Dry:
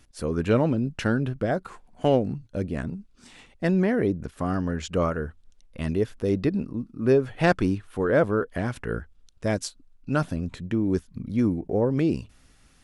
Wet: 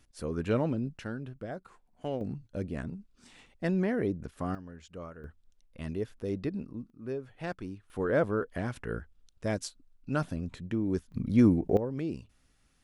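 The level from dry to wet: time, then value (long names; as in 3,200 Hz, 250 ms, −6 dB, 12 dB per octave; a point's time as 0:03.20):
−7 dB
from 0:00.97 −14 dB
from 0:02.21 −6.5 dB
from 0:04.55 −19 dB
from 0:05.24 −9.5 dB
from 0:06.90 −16.5 dB
from 0:07.90 −6 dB
from 0:11.12 +1.5 dB
from 0:11.77 −11 dB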